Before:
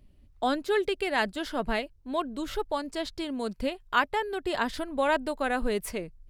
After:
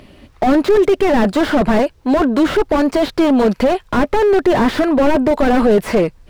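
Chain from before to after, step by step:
mid-hump overdrive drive 30 dB, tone 2,300 Hz, clips at −10.5 dBFS
slew-rate limiting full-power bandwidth 62 Hz
level +8.5 dB

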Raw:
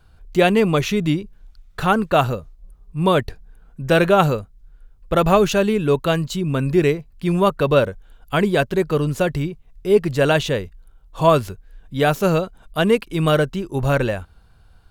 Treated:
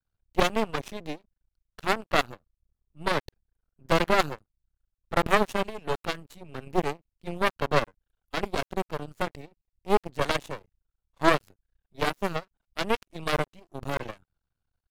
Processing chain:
harmonic generator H 2 −7 dB, 3 −19 dB, 5 −28 dB, 7 −19 dB, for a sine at −2.5 dBFS
half-wave rectification
level −5 dB

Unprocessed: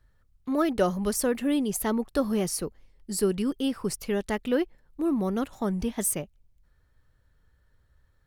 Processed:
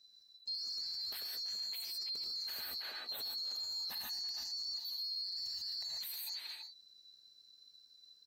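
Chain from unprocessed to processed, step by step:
neighbouring bands swapped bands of 4,000 Hz
0:03.90–0:05.96: comb filter 1.1 ms, depth 76%
far-end echo of a speakerphone 330 ms, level −9 dB
reverb whose tail is shaped and stops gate 170 ms rising, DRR 0.5 dB
brickwall limiter −32.5 dBFS, peak gain reduction 23 dB
level −2 dB

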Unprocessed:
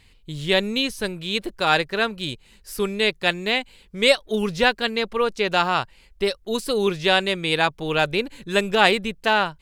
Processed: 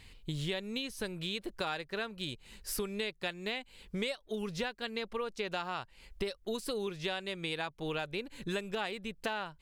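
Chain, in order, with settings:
downward compressor 12 to 1, threshold −33 dBFS, peak gain reduction 22.5 dB

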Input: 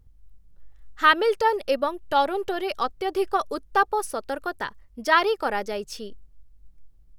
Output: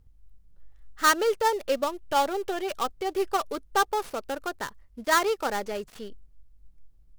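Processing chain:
gap after every zero crossing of 0.12 ms
level −2.5 dB

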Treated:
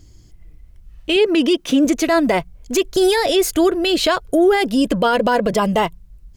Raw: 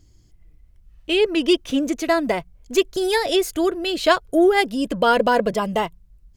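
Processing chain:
0:01.16–0:01.85: low shelf with overshoot 130 Hz −12.5 dB, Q 1.5
brickwall limiter −15.5 dBFS, peak gain reduction 11.5 dB
level +8 dB

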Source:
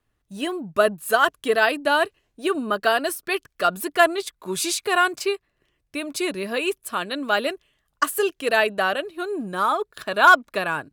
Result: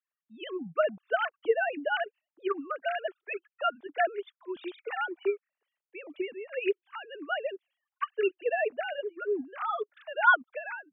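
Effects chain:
three sine waves on the formant tracks
level −9 dB

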